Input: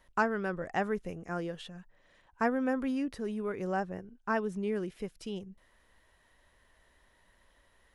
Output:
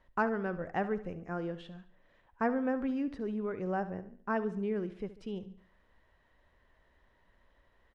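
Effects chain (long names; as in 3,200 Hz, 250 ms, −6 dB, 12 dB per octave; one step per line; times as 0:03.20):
head-to-tape spacing loss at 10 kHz 22 dB
repeating echo 71 ms, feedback 46%, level −14.5 dB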